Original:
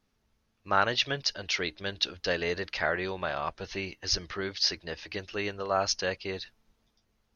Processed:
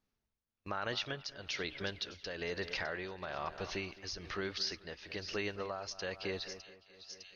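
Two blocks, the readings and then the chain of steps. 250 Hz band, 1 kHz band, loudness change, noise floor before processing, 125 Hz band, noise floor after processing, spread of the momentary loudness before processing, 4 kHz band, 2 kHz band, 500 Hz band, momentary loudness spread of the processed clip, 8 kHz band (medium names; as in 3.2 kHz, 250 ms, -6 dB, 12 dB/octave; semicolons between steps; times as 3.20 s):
-6.0 dB, -11.5 dB, -9.5 dB, -75 dBFS, -6.5 dB, under -85 dBFS, 10 LU, -9.5 dB, -8.5 dB, -8.0 dB, 8 LU, no reading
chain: gate -59 dBFS, range -15 dB; peak limiter -20 dBFS, peak gain reduction 10.5 dB; two-band feedback delay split 2.8 kHz, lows 214 ms, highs 607 ms, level -15 dB; tremolo 1.1 Hz, depth 75%; compression 2:1, threshold -48 dBFS, peak gain reduction 11.5 dB; trim +5.5 dB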